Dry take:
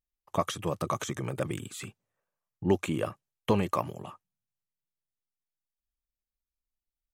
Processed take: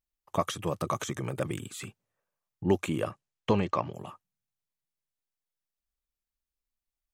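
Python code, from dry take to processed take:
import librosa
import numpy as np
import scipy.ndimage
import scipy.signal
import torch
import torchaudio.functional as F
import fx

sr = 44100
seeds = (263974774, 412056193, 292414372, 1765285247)

y = fx.lowpass(x, sr, hz=fx.line((3.04, 11000.0), (3.93, 4600.0)), slope=24, at=(3.04, 3.93), fade=0.02)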